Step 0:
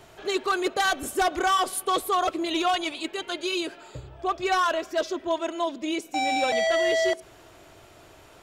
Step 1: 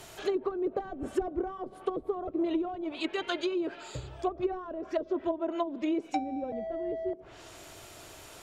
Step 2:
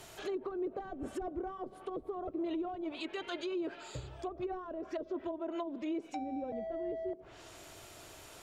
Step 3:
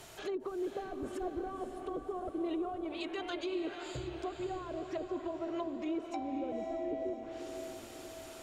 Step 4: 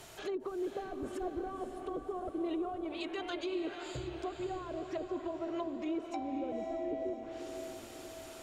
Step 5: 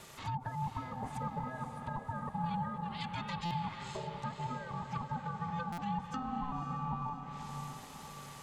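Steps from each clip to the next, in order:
low-pass that closes with the level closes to 320 Hz, closed at -22 dBFS; treble shelf 4.1 kHz +11.5 dB
peak limiter -26.5 dBFS, peak gain reduction 9 dB; trim -3.5 dB
echo that smears into a reverb 543 ms, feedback 52%, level -7 dB
no audible change
ring modulator 510 Hz; buffer glitch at 3.45/5.72 s, samples 256, times 9; trim +2.5 dB

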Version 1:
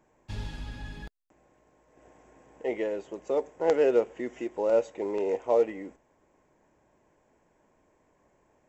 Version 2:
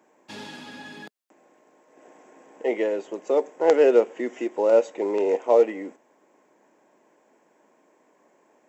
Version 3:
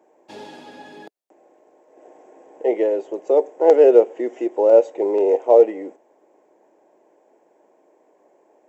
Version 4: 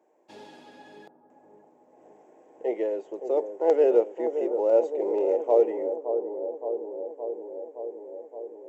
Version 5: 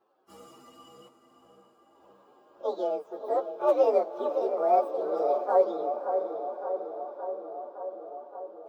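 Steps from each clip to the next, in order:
high-pass 220 Hz 24 dB/octave; trim +6 dB
high-order bell 520 Hz +10 dB; trim -4.5 dB
bucket-brigade echo 568 ms, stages 4096, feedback 73%, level -8.5 dB; trim -8.5 dB
frequency axis rescaled in octaves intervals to 129%; echo that smears into a reverb 579 ms, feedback 51%, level -12.5 dB

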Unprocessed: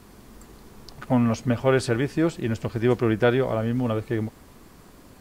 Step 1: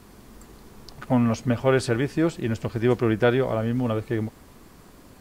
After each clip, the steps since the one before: no audible change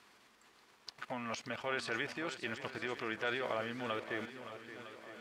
level held to a coarse grid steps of 14 dB; band-pass filter 2.5 kHz, Q 0.81; on a send: shuffle delay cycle 956 ms, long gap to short 1.5:1, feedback 47%, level -12 dB; on the sum: trim +3 dB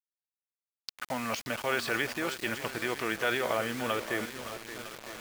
bit crusher 8-bit; trim +7 dB

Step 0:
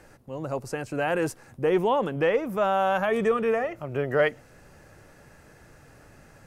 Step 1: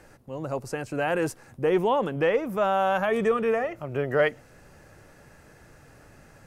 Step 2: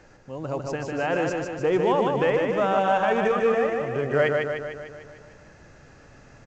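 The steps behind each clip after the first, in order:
no audible change
on a send: feedback delay 150 ms, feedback 58%, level -3.5 dB; on the sum: µ-law 128 kbps 16 kHz

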